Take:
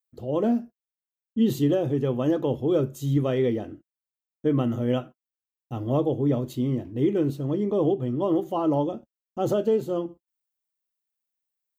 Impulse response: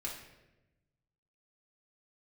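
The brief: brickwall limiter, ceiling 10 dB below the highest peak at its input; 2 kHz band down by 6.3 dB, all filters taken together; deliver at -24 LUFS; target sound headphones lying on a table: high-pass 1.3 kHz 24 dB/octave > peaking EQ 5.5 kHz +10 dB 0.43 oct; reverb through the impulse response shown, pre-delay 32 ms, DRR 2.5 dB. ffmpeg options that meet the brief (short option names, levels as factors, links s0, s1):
-filter_complex "[0:a]equalizer=f=2000:t=o:g=-8,alimiter=limit=0.075:level=0:latency=1,asplit=2[s0][s1];[1:a]atrim=start_sample=2205,adelay=32[s2];[s1][s2]afir=irnorm=-1:irlink=0,volume=0.708[s3];[s0][s3]amix=inputs=2:normalize=0,highpass=f=1300:w=0.5412,highpass=f=1300:w=1.3066,equalizer=f=5500:t=o:w=0.43:g=10,volume=16.8"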